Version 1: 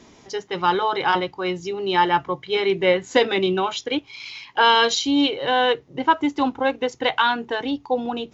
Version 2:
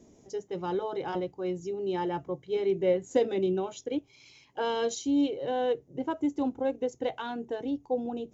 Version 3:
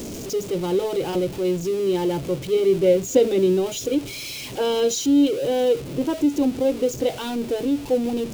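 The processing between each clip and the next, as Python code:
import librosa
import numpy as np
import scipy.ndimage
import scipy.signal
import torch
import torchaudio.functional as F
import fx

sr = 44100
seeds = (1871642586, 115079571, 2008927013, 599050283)

y1 = fx.band_shelf(x, sr, hz=2100.0, db=-14.5, octaves=2.8)
y1 = y1 * librosa.db_to_amplitude(-6.0)
y2 = y1 + 0.5 * 10.0 ** (-35.5 / 20.0) * np.sign(y1)
y2 = fx.band_shelf(y2, sr, hz=1200.0, db=-8.5, octaves=1.7)
y2 = y2 * librosa.db_to_amplitude(8.0)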